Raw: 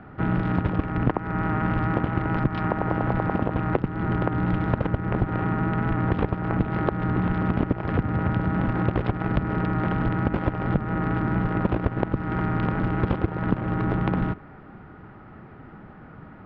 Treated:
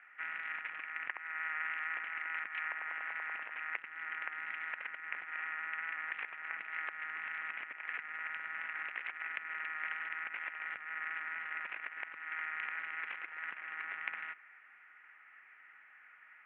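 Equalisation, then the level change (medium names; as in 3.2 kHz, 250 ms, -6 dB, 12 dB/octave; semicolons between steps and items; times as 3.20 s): Butterworth band-pass 2.2 kHz, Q 2.4; distance through air 320 m; +6.5 dB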